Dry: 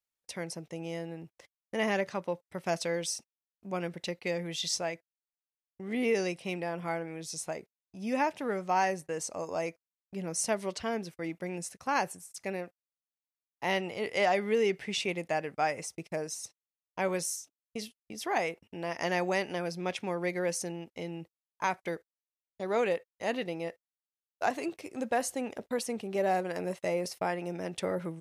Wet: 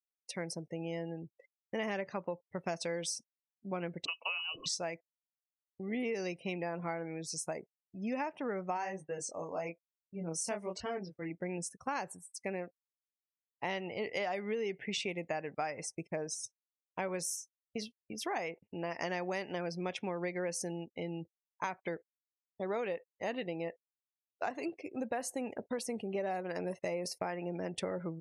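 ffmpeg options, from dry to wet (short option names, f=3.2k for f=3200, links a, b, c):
-filter_complex "[0:a]asettb=1/sr,asplit=3[a][b][c];[a]atrim=end=4.054[d];[b]atrim=start=4.05:end=4.66,asetpts=PTS-STARTPTS,afade=t=in:d=0.004:c=qsin,afade=t=out:st=0.606:d=0.004:c=qsin,lowpass=f=2.6k:t=q:w=0.5098,lowpass=f=2.6k:t=q:w=0.6013,lowpass=f=2.6k:t=q:w=0.9,lowpass=f=2.6k:t=q:w=2.563,afreqshift=-3100[e];[c]atrim=start=4.656[f];[d][e]acrossfade=d=0.004:c1=hsin:c2=qsin[g];[g][f]acrossfade=d=0.004:c1=qsin:c2=hsin,asplit=3[h][i][j];[h]afade=t=out:st=8.76:d=0.02[k];[i]flanger=delay=20:depth=5.9:speed=1.1,afade=t=in:st=8.76:d=0.02,afade=t=out:st=11.3:d=0.02[l];[j]afade=t=in:st=11.3:d=0.02[m];[k][l][m]amix=inputs=3:normalize=0,asettb=1/sr,asplit=3[n][o][p];[n]atrim=end=26.184[q];[o]atrim=start=26.18:end=27.25,asetpts=PTS-STARTPTS,afade=t=in:d=0.004:c=qsin,afade=t=out:st=1.066:d=0.004:c=qsin,highshelf=f=3k:g=3[r];[p]atrim=start=27.246[s];[q][r]acrossfade=d=0.004:c1=hsin:c2=qsin[t];[t][s]acrossfade=d=0.004:c1=qsin:c2=hsin,afftdn=nr=33:nf=-48,acompressor=threshold=-33dB:ratio=6"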